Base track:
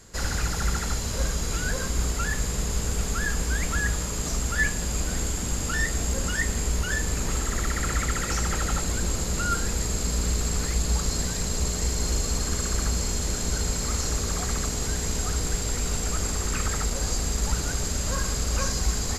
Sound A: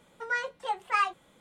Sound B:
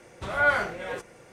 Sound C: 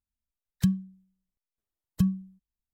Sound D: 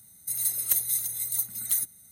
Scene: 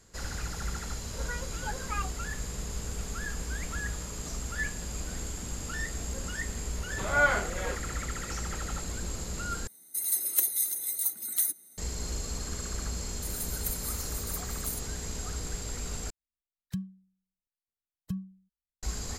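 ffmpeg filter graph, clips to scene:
-filter_complex "[4:a]asplit=2[s0][s1];[0:a]volume=0.355[s2];[1:a]tiltshelf=f=970:g=3[s3];[2:a]lowpass=7300[s4];[s0]highpass=f=320:t=q:w=2.4[s5];[s2]asplit=3[s6][s7][s8];[s6]atrim=end=9.674[s9];[s5]atrim=end=2.11,asetpts=PTS-STARTPTS,volume=0.841[s10];[s7]atrim=start=11.776:end=16.104[s11];[3:a]atrim=end=2.73,asetpts=PTS-STARTPTS,volume=0.282[s12];[s8]atrim=start=18.826[s13];[s3]atrim=end=1.4,asetpts=PTS-STARTPTS,volume=0.355,afade=t=in:d=0.004:c=hsin,afade=t=out:st=1.396:d=0.004:c=hsin,adelay=980[s14];[s4]atrim=end=1.32,asetpts=PTS-STARTPTS,volume=0.794,afade=t=in:d=0.004:c=hsin,afade=t=out:st=1.316:d=0.004:c=hsin,adelay=6760[s15];[s1]atrim=end=2.11,asetpts=PTS-STARTPTS,volume=0.282,afade=t=in:d=0.004:c=hsin,afade=t=out:st=2.106:d=0.004:c=hsin,adelay=12950[s16];[s9][s10]acrossfade=d=0.004:c1=hsin:c2=hsin[s17];[s17][s11]acrossfade=d=0.004:c1=hsin:c2=hsin[s18];[s18][s12]acrossfade=d=0.004:c1=hsin:c2=hsin[s19];[s19][s13]acrossfade=d=0.004:c1=hsin:c2=hsin[s20];[s20][s14][s15][s16]amix=inputs=4:normalize=0"

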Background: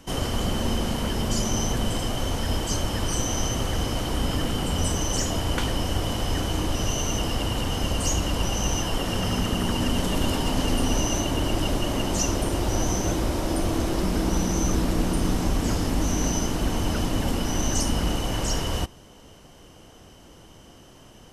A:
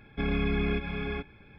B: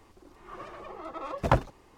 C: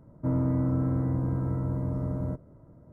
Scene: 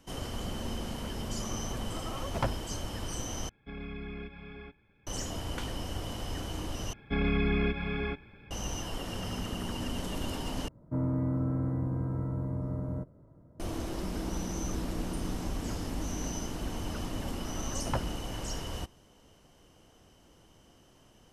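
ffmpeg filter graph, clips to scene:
-filter_complex "[2:a]asplit=2[s0][s1];[1:a]asplit=2[s2][s3];[0:a]volume=0.282[s4];[s0]asoftclip=type=tanh:threshold=0.133[s5];[s4]asplit=4[s6][s7][s8][s9];[s6]atrim=end=3.494[s10];[s2]atrim=end=1.58,asetpts=PTS-STARTPTS,volume=0.224[s11];[s7]atrim=start=5.066:end=6.934[s12];[s3]atrim=end=1.58[s13];[s8]atrim=start=8.506:end=10.684[s14];[3:a]atrim=end=2.92,asetpts=PTS-STARTPTS,volume=0.631[s15];[s9]atrim=start=13.596[s16];[s5]atrim=end=1.97,asetpts=PTS-STARTPTS,volume=0.562,afade=t=in:d=0.004:c=hsin,afade=t=out:st=1.966:d=0.004:c=hsin,adelay=910[s17];[s1]atrim=end=1.97,asetpts=PTS-STARTPTS,volume=0.299,afade=t=in:d=0.004:c=hsin,afade=t=out:st=1.966:d=0.004:c=hsin,adelay=16420[s18];[s10][s11]acrossfade=d=0.004:c1=hsin:c2=hsin[s19];[s19][s12]acrossfade=d=0.004:c1=hsin:c2=hsin[s20];[s20][s13]acrossfade=d=0.004:c1=hsin:c2=hsin[s21];[s21][s14]acrossfade=d=0.004:c1=hsin:c2=hsin[s22];[s22][s15]acrossfade=d=0.004:c1=hsin:c2=hsin[s23];[s23][s16]acrossfade=d=0.004:c1=hsin:c2=hsin[s24];[s24][s17][s18]amix=inputs=3:normalize=0"

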